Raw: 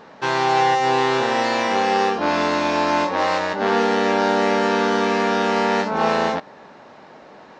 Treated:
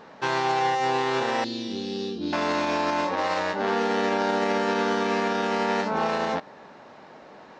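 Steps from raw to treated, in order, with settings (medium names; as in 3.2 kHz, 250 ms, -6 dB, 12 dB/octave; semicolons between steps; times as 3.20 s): 1.44–2.33 s: FFT filter 350 Hz 0 dB, 550 Hz -19 dB, 960 Hz -28 dB, 2.1 kHz -22 dB, 3.8 kHz +1 dB, 7.9 kHz -14 dB; peak limiter -12 dBFS, peak gain reduction 6 dB; trim -3 dB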